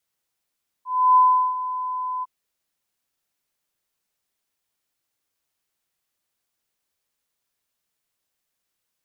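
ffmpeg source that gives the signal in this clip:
ffmpeg -f lavfi -i "aevalsrc='0.299*sin(2*PI*1010*t)':duration=1.406:sample_rate=44100,afade=type=in:duration=0.309,afade=type=out:start_time=0.309:duration=0.382:silence=0.2,afade=type=out:start_time=1.38:duration=0.026" out.wav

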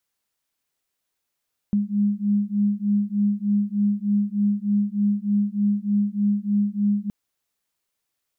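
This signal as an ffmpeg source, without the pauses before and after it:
ffmpeg -f lavfi -i "aevalsrc='0.0794*(sin(2*PI*203*t)+sin(2*PI*206.3*t))':duration=5.37:sample_rate=44100" out.wav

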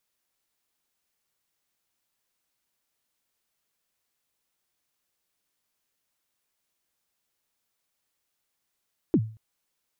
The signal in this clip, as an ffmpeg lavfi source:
ffmpeg -f lavfi -i "aevalsrc='0.2*pow(10,-3*t/0.39)*sin(2*PI*(380*0.058/log(110/380)*(exp(log(110/380)*min(t,0.058)/0.058)-1)+110*max(t-0.058,0)))':duration=0.23:sample_rate=44100" out.wav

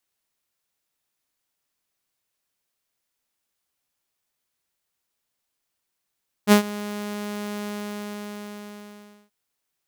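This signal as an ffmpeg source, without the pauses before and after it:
ffmpeg -f lavfi -i "aevalsrc='0.447*(2*mod(207*t,1)-1)':duration=2.83:sample_rate=44100,afade=type=in:duration=0.049,afade=type=out:start_time=0.049:duration=0.103:silence=0.106,afade=type=out:start_time=1.16:duration=1.67" out.wav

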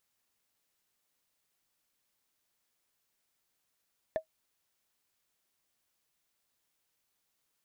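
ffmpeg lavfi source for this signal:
ffmpeg -f lavfi -i "aevalsrc='0.075*pow(10,-3*t/0.1)*sin(2*PI*637*t)+0.0188*pow(10,-3*t/0.03)*sin(2*PI*1756.2*t)+0.00473*pow(10,-3*t/0.013)*sin(2*PI*3442.3*t)+0.00119*pow(10,-3*t/0.007)*sin(2*PI*5690.3*t)+0.000299*pow(10,-3*t/0.004)*sin(2*PI*8497.6*t)':duration=0.45:sample_rate=44100" out.wav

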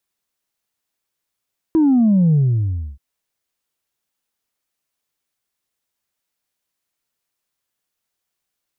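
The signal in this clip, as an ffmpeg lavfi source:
ffmpeg -f lavfi -i "aevalsrc='0.282*clip((1.23-t)/0.65,0,1)*tanh(1.06*sin(2*PI*330*1.23/log(65/330)*(exp(log(65/330)*t/1.23)-1)))/tanh(1.06)':duration=1.23:sample_rate=44100" out.wav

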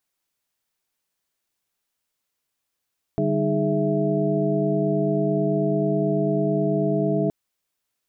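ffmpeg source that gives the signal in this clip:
ffmpeg -f lavfi -i "aevalsrc='0.0531*(sin(2*PI*146.83*t)+sin(2*PI*196*t)+sin(2*PI*311.13*t)+sin(2*PI*415.3*t)+sin(2*PI*659.26*t))':duration=4.12:sample_rate=44100" out.wav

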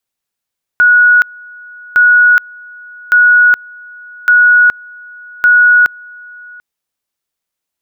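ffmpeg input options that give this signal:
ffmpeg -f lavfi -i "aevalsrc='pow(10,(-3.5-26.5*gte(mod(t,1.16),0.42))/20)*sin(2*PI*1460*t)':duration=5.8:sample_rate=44100" out.wav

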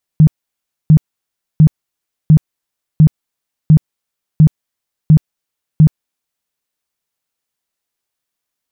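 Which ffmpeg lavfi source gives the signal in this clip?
ffmpeg -f lavfi -i "aevalsrc='0.794*sin(2*PI*155*mod(t,0.7))*lt(mod(t,0.7),11/155)':duration=6.3:sample_rate=44100" out.wav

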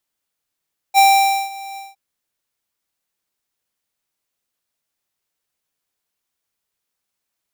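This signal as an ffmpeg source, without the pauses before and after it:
ffmpeg -f lavfi -i "aevalsrc='0.335*(2*lt(mod(785*t,1),0.5)-1)':duration=1.012:sample_rate=44100,afade=type=in:duration=0.041,afade=type=out:start_time=0.041:duration=0.511:silence=0.0794,afade=type=out:start_time=0.83:duration=0.182" out.wav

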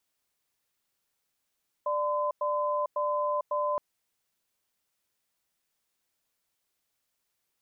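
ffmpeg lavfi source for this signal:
ffmpeg -f lavfi -i "aevalsrc='0.0376*(sin(2*PI*592*t)+sin(2*PI*1020*t))*clip(min(mod(t,0.55),0.45-mod(t,0.55))/0.005,0,1)':duration=1.92:sample_rate=44100" out.wav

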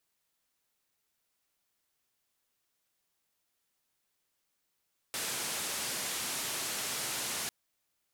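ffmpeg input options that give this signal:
ffmpeg -f lavfi -i "anoisesrc=color=white:duration=2.35:sample_rate=44100:seed=1,highpass=frequency=110,lowpass=frequency=11000,volume=-28.2dB" out.wav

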